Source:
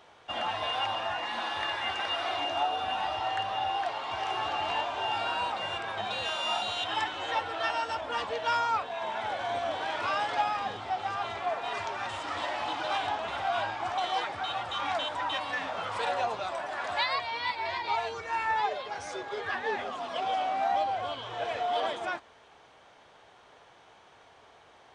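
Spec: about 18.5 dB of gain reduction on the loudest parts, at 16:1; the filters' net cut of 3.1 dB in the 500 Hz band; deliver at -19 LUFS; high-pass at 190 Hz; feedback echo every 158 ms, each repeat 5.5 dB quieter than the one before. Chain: high-pass 190 Hz; peaking EQ 500 Hz -4.5 dB; compression 16:1, threshold -44 dBFS; feedback delay 158 ms, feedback 53%, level -5.5 dB; trim +26.5 dB

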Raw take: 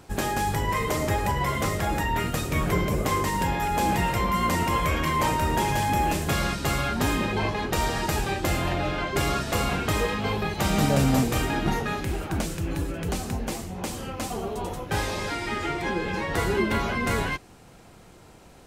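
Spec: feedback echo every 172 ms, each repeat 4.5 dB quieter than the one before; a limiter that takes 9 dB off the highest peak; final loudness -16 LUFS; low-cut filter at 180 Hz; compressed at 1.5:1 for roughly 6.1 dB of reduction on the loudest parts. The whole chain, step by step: high-pass 180 Hz; compression 1.5:1, threshold -37 dBFS; peak limiter -26.5 dBFS; feedback delay 172 ms, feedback 60%, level -4.5 dB; trim +17 dB

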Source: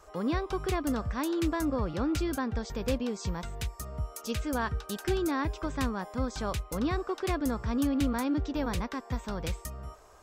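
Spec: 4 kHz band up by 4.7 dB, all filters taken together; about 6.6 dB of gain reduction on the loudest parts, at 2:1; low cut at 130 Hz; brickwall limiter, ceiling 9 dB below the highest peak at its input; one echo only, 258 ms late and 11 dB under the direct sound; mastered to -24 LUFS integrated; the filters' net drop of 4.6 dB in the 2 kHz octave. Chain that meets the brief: high-pass 130 Hz; peaking EQ 2 kHz -8 dB; peaking EQ 4 kHz +8 dB; compression 2:1, threshold -38 dBFS; peak limiter -32 dBFS; delay 258 ms -11 dB; trim +17 dB

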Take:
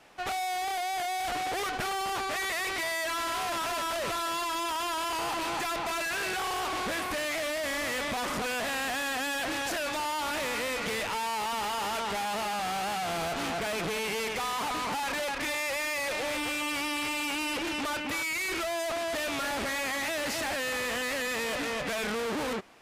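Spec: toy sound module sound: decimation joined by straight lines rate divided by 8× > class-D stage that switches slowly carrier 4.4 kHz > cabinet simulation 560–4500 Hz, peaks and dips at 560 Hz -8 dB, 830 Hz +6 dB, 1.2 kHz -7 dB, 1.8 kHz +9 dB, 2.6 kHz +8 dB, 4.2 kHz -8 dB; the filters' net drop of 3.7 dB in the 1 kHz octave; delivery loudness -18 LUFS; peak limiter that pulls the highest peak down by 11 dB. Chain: peaking EQ 1 kHz -6 dB; peak limiter -33 dBFS; decimation joined by straight lines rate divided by 8×; class-D stage that switches slowly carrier 4.4 kHz; cabinet simulation 560–4500 Hz, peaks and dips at 560 Hz -8 dB, 830 Hz +6 dB, 1.2 kHz -7 dB, 1.8 kHz +9 dB, 2.6 kHz +8 dB, 4.2 kHz -8 dB; trim +23 dB

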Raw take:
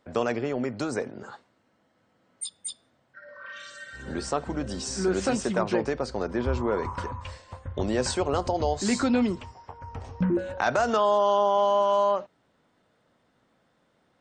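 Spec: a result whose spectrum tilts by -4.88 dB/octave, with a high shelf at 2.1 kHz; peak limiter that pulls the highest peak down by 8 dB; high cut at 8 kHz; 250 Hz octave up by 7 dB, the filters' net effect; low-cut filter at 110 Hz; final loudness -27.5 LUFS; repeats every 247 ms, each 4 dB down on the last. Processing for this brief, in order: high-pass 110 Hz; low-pass 8 kHz; peaking EQ 250 Hz +8.5 dB; treble shelf 2.1 kHz +5.5 dB; peak limiter -14.5 dBFS; feedback delay 247 ms, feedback 63%, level -4 dB; trim -3.5 dB

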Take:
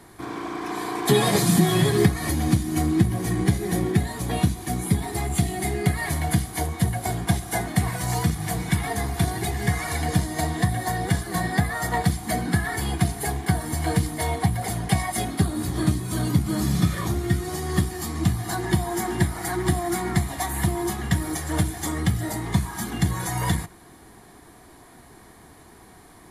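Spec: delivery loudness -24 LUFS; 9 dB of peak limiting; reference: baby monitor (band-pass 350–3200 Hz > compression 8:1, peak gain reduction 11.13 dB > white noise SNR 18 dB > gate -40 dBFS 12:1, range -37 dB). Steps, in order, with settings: peak limiter -13.5 dBFS; band-pass 350–3200 Hz; compression 8:1, threshold -33 dBFS; white noise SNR 18 dB; gate -40 dBFS 12:1, range -37 dB; trim +13 dB

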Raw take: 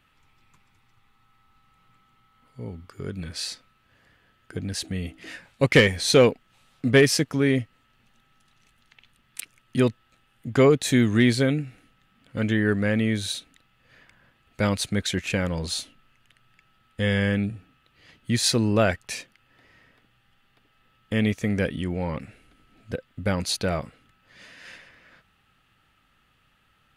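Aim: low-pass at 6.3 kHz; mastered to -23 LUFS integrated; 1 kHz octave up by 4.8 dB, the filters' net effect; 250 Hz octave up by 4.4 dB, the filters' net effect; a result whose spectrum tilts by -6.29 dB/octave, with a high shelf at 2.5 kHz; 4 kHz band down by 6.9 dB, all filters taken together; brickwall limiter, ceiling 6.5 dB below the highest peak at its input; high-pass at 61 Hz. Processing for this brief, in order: high-pass 61 Hz; low-pass 6.3 kHz; peaking EQ 250 Hz +5 dB; peaking EQ 1 kHz +7.5 dB; treble shelf 2.5 kHz -6 dB; peaking EQ 4 kHz -3 dB; peak limiter -8.5 dBFS

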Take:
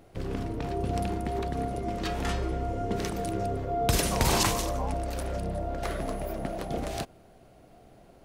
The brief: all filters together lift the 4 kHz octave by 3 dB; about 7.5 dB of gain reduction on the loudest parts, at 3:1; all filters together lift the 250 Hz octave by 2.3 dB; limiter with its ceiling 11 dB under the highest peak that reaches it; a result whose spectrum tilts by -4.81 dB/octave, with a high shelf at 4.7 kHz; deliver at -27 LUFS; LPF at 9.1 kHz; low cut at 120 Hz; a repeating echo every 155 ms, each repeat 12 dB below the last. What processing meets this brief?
high-pass 120 Hz; low-pass 9.1 kHz; peaking EQ 250 Hz +3.5 dB; peaking EQ 4 kHz +8 dB; treble shelf 4.7 kHz -8 dB; compression 3:1, threshold -31 dBFS; peak limiter -28 dBFS; feedback delay 155 ms, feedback 25%, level -12 dB; trim +10 dB

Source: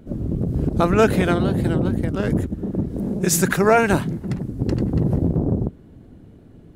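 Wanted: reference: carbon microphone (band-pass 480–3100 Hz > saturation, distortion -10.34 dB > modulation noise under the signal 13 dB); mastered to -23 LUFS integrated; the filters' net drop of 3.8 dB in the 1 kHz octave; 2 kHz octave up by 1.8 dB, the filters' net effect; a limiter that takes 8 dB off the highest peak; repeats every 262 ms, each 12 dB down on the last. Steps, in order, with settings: peaking EQ 1 kHz -8 dB; peaking EQ 2 kHz +6.5 dB; peak limiter -11.5 dBFS; band-pass 480–3100 Hz; feedback delay 262 ms, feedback 25%, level -12 dB; saturation -25 dBFS; modulation noise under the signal 13 dB; trim +10 dB

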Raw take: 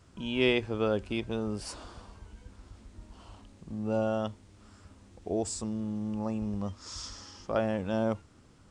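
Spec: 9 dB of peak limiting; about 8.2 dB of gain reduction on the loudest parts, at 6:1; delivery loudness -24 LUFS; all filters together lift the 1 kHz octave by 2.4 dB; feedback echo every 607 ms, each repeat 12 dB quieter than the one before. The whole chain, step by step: peaking EQ 1 kHz +3.5 dB; compression 6:1, threshold -30 dBFS; peak limiter -28.5 dBFS; feedback delay 607 ms, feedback 25%, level -12 dB; trim +15.5 dB

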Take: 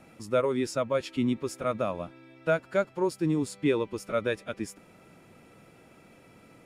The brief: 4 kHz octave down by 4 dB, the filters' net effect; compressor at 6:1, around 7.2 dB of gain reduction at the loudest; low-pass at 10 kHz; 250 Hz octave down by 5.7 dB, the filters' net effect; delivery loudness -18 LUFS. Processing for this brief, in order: low-pass 10 kHz; peaking EQ 250 Hz -7.5 dB; peaking EQ 4 kHz -5 dB; compression 6:1, threshold -29 dBFS; trim +18.5 dB

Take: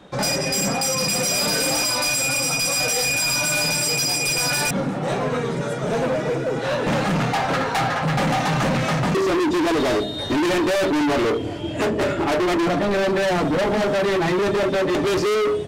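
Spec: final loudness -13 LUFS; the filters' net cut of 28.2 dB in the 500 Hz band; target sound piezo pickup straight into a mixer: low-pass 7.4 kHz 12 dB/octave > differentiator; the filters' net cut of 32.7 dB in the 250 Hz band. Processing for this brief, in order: low-pass 7.4 kHz 12 dB/octave; differentiator; peaking EQ 250 Hz -4.5 dB; peaking EQ 500 Hz -5.5 dB; trim +15.5 dB

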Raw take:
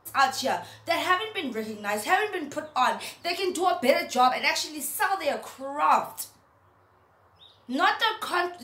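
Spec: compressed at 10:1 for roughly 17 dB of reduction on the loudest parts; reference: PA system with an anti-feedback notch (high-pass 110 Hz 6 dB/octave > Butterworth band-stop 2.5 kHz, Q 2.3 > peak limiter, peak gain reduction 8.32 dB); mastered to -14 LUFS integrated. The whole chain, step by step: compression 10:1, threshold -33 dBFS; high-pass 110 Hz 6 dB/octave; Butterworth band-stop 2.5 kHz, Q 2.3; trim +26 dB; peak limiter -4 dBFS

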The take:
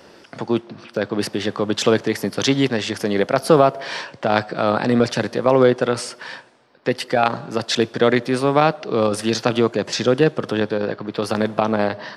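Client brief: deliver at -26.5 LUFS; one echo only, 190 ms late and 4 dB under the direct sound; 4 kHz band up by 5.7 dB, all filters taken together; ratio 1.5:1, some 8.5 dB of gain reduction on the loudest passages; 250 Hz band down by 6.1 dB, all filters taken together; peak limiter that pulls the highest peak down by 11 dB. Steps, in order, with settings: peaking EQ 250 Hz -8 dB; peaking EQ 4 kHz +7 dB; compression 1.5:1, threshold -35 dBFS; peak limiter -18.5 dBFS; delay 190 ms -4 dB; trim +3 dB

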